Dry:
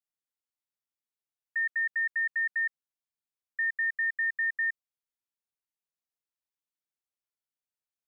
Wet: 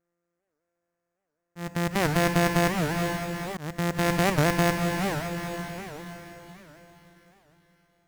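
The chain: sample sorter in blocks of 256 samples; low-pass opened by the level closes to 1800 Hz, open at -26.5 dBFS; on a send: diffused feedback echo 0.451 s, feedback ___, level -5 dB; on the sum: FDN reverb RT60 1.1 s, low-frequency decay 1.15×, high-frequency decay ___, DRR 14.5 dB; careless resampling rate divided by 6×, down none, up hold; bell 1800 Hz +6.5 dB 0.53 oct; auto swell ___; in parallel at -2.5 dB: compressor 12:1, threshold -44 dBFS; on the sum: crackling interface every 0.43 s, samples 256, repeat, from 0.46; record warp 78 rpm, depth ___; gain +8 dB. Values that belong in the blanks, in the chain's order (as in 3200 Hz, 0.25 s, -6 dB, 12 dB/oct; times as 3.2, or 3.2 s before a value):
45%, 0.4×, 0.567 s, 250 cents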